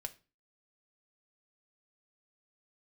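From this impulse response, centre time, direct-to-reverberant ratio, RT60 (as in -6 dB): 4 ms, 6.0 dB, 0.30 s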